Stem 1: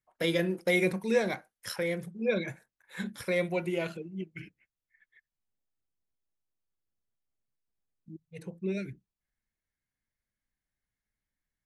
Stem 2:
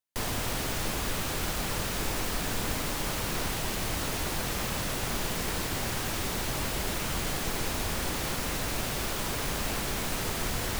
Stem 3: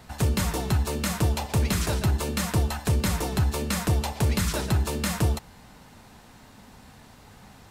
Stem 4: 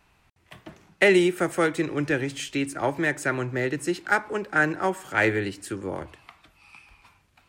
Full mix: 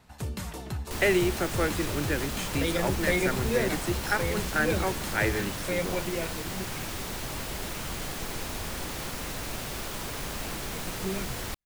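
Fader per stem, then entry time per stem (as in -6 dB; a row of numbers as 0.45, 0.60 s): -1.5, -3.5, -10.5, -5.5 dB; 2.40, 0.75, 0.00, 0.00 s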